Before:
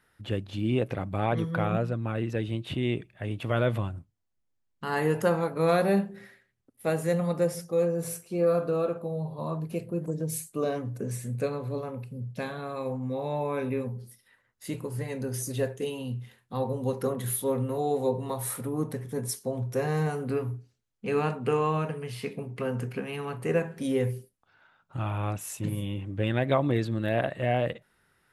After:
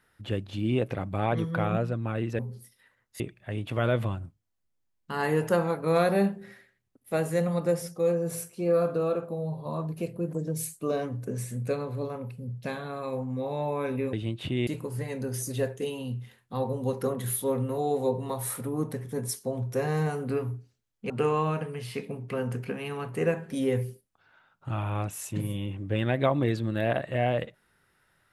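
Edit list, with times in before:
2.39–2.93 s: swap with 13.86–14.67 s
21.10–21.38 s: delete

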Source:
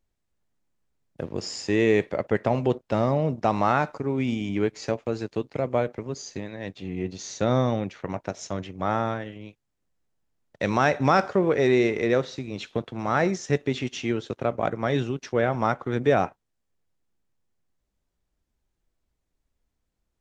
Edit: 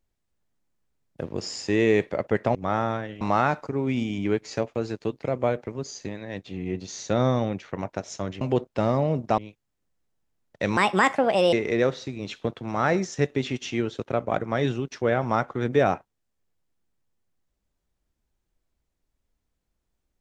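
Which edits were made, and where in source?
2.55–3.52 s: swap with 8.72–9.38 s
10.77–11.84 s: speed 141%

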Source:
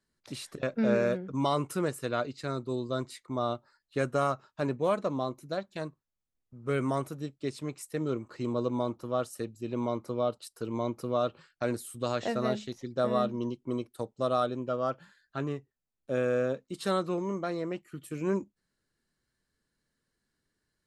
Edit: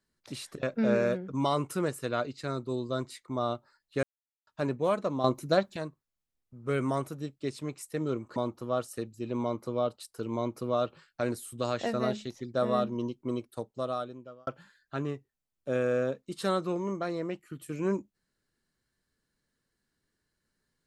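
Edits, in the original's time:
4.03–4.47 s: mute
5.24–5.76 s: gain +9 dB
8.36–8.78 s: delete
13.88–14.89 s: fade out

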